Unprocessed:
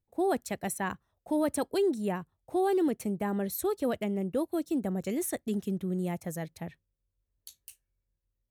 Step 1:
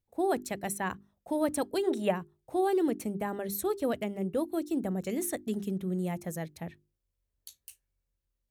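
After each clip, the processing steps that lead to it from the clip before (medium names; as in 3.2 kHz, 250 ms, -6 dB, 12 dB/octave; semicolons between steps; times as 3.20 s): hum notches 50/100/150/200/250/300/350/400 Hz; time-frequency box 1.84–2.11 s, 440–3900 Hz +10 dB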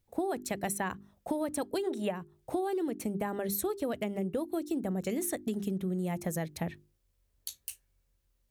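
compression 10:1, threshold -38 dBFS, peak gain reduction 16.5 dB; trim +8.5 dB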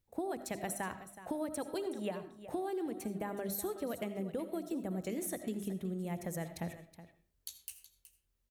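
delay 371 ms -14 dB; on a send at -11 dB: reverberation RT60 0.40 s, pre-delay 40 ms; on the sum: trim -5.5 dB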